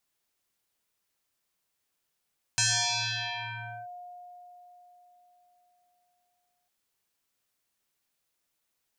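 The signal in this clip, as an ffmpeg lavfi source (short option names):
-f lavfi -i "aevalsrc='0.0841*pow(10,-3*t/4.28)*sin(2*PI*714*t+9.1*clip(1-t/1.29,0,1)*sin(2*PI*1.16*714*t))':d=4.1:s=44100"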